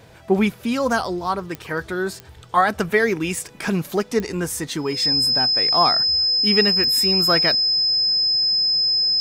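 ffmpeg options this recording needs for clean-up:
ffmpeg -i in.wav -af "adeclick=threshold=4,bandreject=frequency=5100:width=30" out.wav

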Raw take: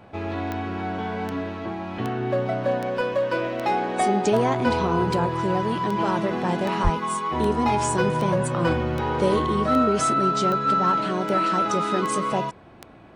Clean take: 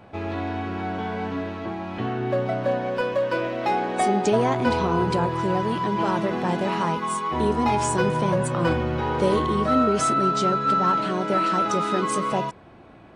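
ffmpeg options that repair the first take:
ffmpeg -i in.wav -filter_complex "[0:a]adeclick=threshold=4,asplit=3[link_01][link_02][link_03];[link_01]afade=type=out:start_time=6.83:duration=0.02[link_04];[link_02]highpass=frequency=140:width=0.5412,highpass=frequency=140:width=1.3066,afade=type=in:start_time=6.83:duration=0.02,afade=type=out:start_time=6.95:duration=0.02[link_05];[link_03]afade=type=in:start_time=6.95:duration=0.02[link_06];[link_04][link_05][link_06]amix=inputs=3:normalize=0" out.wav

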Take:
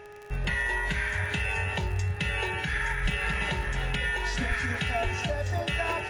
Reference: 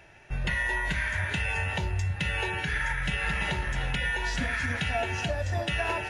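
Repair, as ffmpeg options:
ffmpeg -i in.wav -filter_complex "[0:a]adeclick=threshold=4,bandreject=frequency=415.3:width_type=h:width=4,bandreject=frequency=830.6:width_type=h:width=4,bandreject=frequency=1245.9:width_type=h:width=4,bandreject=frequency=1700:width=30,asplit=3[link_01][link_02][link_03];[link_01]afade=type=out:start_time=3.02:duration=0.02[link_04];[link_02]highpass=frequency=140:width=0.5412,highpass=frequency=140:width=1.3066,afade=type=in:start_time=3.02:duration=0.02,afade=type=out:start_time=3.14:duration=0.02[link_05];[link_03]afade=type=in:start_time=3.14:duration=0.02[link_06];[link_04][link_05][link_06]amix=inputs=3:normalize=0,asplit=3[link_07][link_08][link_09];[link_07]afade=type=out:start_time=4.48:duration=0.02[link_10];[link_08]highpass=frequency=140:width=0.5412,highpass=frequency=140:width=1.3066,afade=type=in:start_time=4.48:duration=0.02,afade=type=out:start_time=4.6:duration=0.02[link_11];[link_09]afade=type=in:start_time=4.6:duration=0.02[link_12];[link_10][link_11][link_12]amix=inputs=3:normalize=0,asplit=3[link_13][link_14][link_15];[link_13]afade=type=out:start_time=5.03:duration=0.02[link_16];[link_14]highpass=frequency=140:width=0.5412,highpass=frequency=140:width=1.3066,afade=type=in:start_time=5.03:duration=0.02,afade=type=out:start_time=5.15:duration=0.02[link_17];[link_15]afade=type=in:start_time=5.15:duration=0.02[link_18];[link_16][link_17][link_18]amix=inputs=3:normalize=0" out.wav

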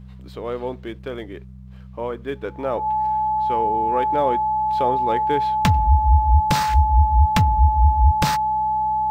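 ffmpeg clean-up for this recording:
ffmpeg -i in.wav -af "bandreject=frequency=63.8:width_type=h:width=4,bandreject=frequency=127.6:width_type=h:width=4,bandreject=frequency=191.4:width_type=h:width=4,bandreject=frequency=860:width=30" out.wav

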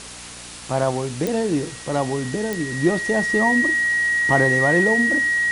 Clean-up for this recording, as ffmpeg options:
ffmpeg -i in.wav -af "adeclick=threshold=4,bandreject=frequency=59.4:width_type=h:width=4,bandreject=frequency=118.8:width_type=h:width=4,bandreject=frequency=178.2:width_type=h:width=4,bandreject=frequency=237.6:width_type=h:width=4,bandreject=frequency=297:width_type=h:width=4,bandreject=frequency=1900:width=30,afwtdn=0.018" out.wav

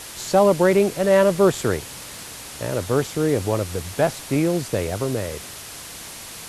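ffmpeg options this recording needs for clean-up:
ffmpeg -i in.wav -af "adeclick=threshold=4,afwtdn=0.018" out.wav

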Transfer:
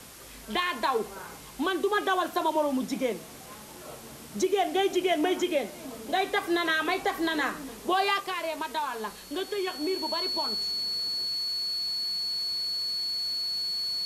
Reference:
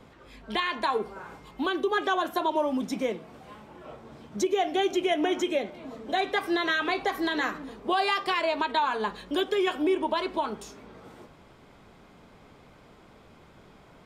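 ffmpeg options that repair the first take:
ffmpeg -i in.wav -af "bandreject=frequency=4400:width=30,afwtdn=0.0045,asetnsamples=nb_out_samples=441:pad=0,asendcmd='8.2 volume volume 5.5dB',volume=0dB" out.wav

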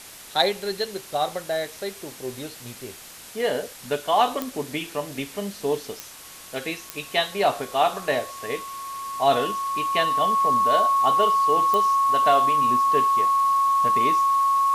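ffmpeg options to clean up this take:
ffmpeg -i in.wav -af "adeclick=threshold=4,bandreject=frequency=1100:width=30,afwtdn=0.0089" out.wav

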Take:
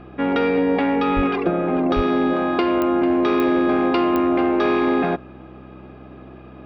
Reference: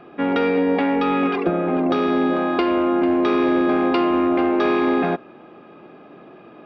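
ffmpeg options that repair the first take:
ffmpeg -i in.wav -filter_complex "[0:a]adeclick=threshold=4,bandreject=frequency=64.4:width_type=h:width=4,bandreject=frequency=128.8:width_type=h:width=4,bandreject=frequency=193.2:width_type=h:width=4,bandreject=frequency=257.6:width_type=h:width=4,bandreject=frequency=322:width_type=h:width=4,asplit=3[link_01][link_02][link_03];[link_01]afade=type=out:start_time=1.15:duration=0.02[link_04];[link_02]highpass=frequency=140:width=0.5412,highpass=frequency=140:width=1.3066,afade=type=in:start_time=1.15:duration=0.02,afade=type=out:start_time=1.27:duration=0.02[link_05];[link_03]afade=type=in:start_time=1.27:duration=0.02[link_06];[link_04][link_05][link_06]amix=inputs=3:normalize=0,asplit=3[link_07][link_08][link_09];[link_07]afade=type=out:start_time=1.95:duration=0.02[link_10];[link_08]highpass=frequency=140:width=0.5412,highpass=frequency=140:width=1.3066,afade=type=in:start_time=1.95:duration=0.02,afade=type=out:start_time=2.07:duration=0.02[link_11];[link_09]afade=type=in:start_time=2.07:duration=0.02[link_12];[link_10][link_11][link_12]amix=inputs=3:normalize=0" out.wav

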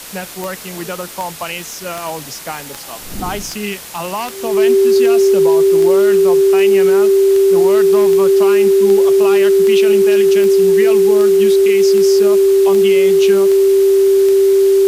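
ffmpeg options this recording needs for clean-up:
ffmpeg -i in.wav -af "adeclick=threshold=4,bandreject=frequency=390:width=30,afftdn=noise_reduction=30:noise_floor=-29" out.wav

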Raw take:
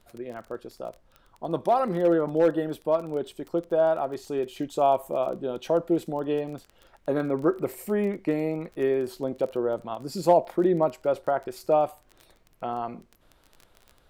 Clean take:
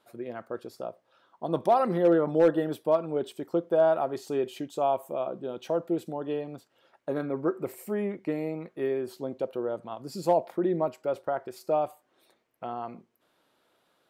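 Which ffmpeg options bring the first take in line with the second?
ffmpeg -i in.wav -af "adeclick=threshold=4,agate=range=-21dB:threshold=-51dB,asetnsamples=nb_out_samples=441:pad=0,asendcmd='4.59 volume volume -4.5dB',volume=0dB" out.wav

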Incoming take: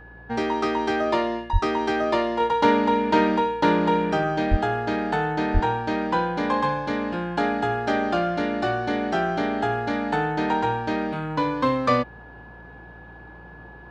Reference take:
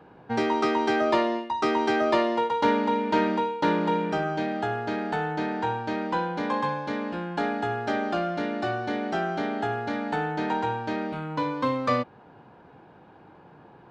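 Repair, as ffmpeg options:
ffmpeg -i in.wav -filter_complex "[0:a]bandreject=frequency=57.4:width_type=h:width=4,bandreject=frequency=114.8:width_type=h:width=4,bandreject=frequency=172.2:width_type=h:width=4,bandreject=frequency=1700:width=30,asplit=3[link_01][link_02][link_03];[link_01]afade=type=out:start_time=1.52:duration=0.02[link_04];[link_02]highpass=frequency=140:width=0.5412,highpass=frequency=140:width=1.3066,afade=type=in:start_time=1.52:duration=0.02,afade=type=out:start_time=1.64:duration=0.02[link_05];[link_03]afade=type=in:start_time=1.64:duration=0.02[link_06];[link_04][link_05][link_06]amix=inputs=3:normalize=0,asplit=3[link_07][link_08][link_09];[link_07]afade=type=out:start_time=4.5:duration=0.02[link_10];[link_08]highpass=frequency=140:width=0.5412,highpass=frequency=140:width=1.3066,afade=type=in:start_time=4.5:duration=0.02,afade=type=out:start_time=4.62:duration=0.02[link_11];[link_09]afade=type=in:start_time=4.62:duration=0.02[link_12];[link_10][link_11][link_12]amix=inputs=3:normalize=0,asplit=3[link_13][link_14][link_15];[link_13]afade=type=out:start_time=5.53:duration=0.02[link_16];[link_14]highpass=frequency=140:width=0.5412,highpass=frequency=140:width=1.3066,afade=type=in:start_time=5.53:duration=0.02,afade=type=out:start_time=5.65:duration=0.02[link_17];[link_15]afade=type=in:start_time=5.65:duration=0.02[link_18];[link_16][link_17][link_18]amix=inputs=3:normalize=0,asetnsamples=nb_out_samples=441:pad=0,asendcmd='2.4 volume volume -4dB',volume=0dB" out.wav

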